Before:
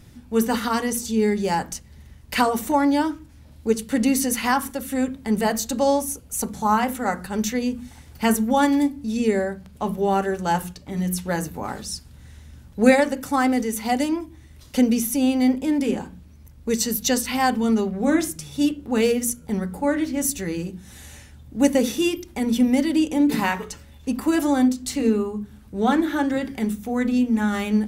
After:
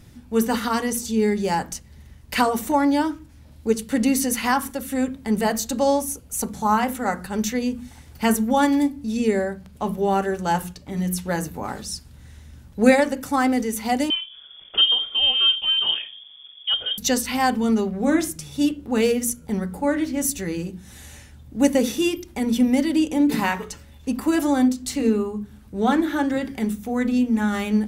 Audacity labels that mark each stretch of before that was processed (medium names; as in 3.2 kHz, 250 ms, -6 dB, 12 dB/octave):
14.100000	16.980000	frequency inversion carrier 3.4 kHz